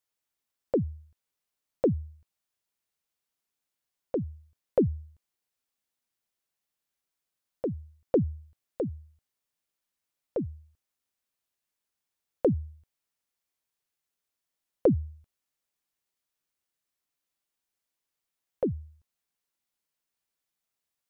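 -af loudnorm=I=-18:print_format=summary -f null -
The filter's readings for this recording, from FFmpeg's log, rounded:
Input Integrated:    -31.3 LUFS
Input True Peak:     -12.9 dBTP
Input LRA:             8.6 LU
Input Threshold:     -42.8 LUFS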